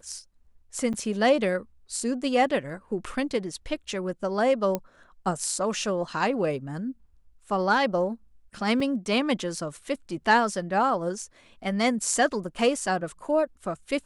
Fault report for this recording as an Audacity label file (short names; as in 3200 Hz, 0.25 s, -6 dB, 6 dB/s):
0.930000	0.940000	gap 7.9 ms
4.750000	4.750000	pop -13 dBFS
8.800000	8.800000	gap 3.7 ms
12.440000	12.440000	gap 2.7 ms